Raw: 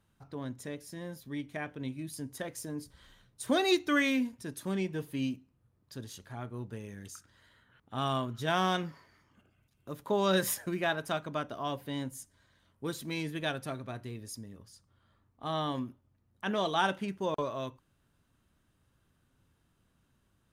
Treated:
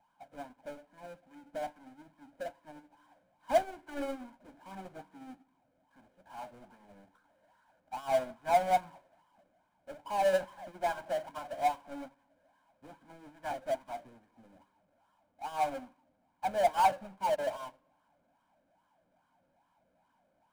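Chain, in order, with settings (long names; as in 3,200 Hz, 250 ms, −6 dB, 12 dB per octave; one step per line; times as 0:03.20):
LFO wah 2.4 Hz 510–1,100 Hz, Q 6.8
loudspeaker in its box 120–2,000 Hz, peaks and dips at 120 Hz −9 dB, 180 Hz +5 dB, 280 Hz +8 dB, 460 Hz −9 dB, 1,300 Hz −10 dB
power curve on the samples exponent 0.35
convolution reverb RT60 1.5 s, pre-delay 3 ms, DRR 12.5 dB
expander for the loud parts 2.5 to 1, over −43 dBFS
level +3 dB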